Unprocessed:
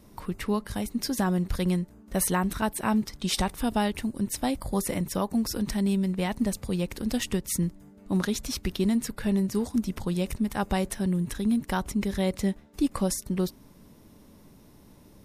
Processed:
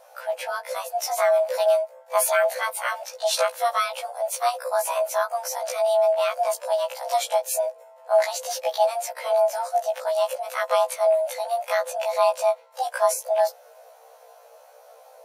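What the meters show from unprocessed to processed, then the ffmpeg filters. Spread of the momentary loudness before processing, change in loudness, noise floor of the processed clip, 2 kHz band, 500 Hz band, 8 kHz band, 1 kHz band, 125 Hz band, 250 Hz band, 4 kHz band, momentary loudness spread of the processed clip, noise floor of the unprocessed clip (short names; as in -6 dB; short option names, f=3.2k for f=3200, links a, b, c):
4 LU, +4.5 dB, -51 dBFS, +6.5 dB, +12.5 dB, +3.5 dB, +10.0 dB, under -40 dB, under -40 dB, +3.0 dB, 8 LU, -54 dBFS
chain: -af "afreqshift=460,afftfilt=real='re*1.73*eq(mod(b,3),0)':imag='im*1.73*eq(mod(b,3),0)':win_size=2048:overlap=0.75,volume=5.5dB"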